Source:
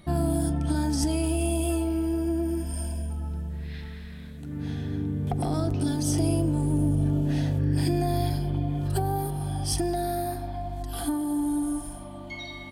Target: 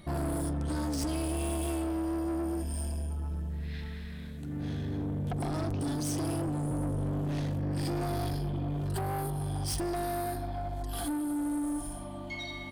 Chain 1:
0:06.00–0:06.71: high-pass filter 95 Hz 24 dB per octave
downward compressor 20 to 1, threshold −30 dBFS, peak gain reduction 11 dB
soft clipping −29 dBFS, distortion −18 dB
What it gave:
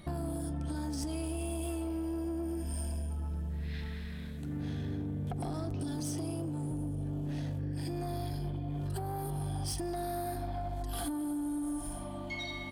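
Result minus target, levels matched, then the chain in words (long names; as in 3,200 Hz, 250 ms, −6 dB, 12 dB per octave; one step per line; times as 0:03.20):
downward compressor: peak gain reduction +11 dB
0:06.00–0:06.71: high-pass filter 95 Hz 24 dB per octave
soft clipping −29 dBFS, distortion −9 dB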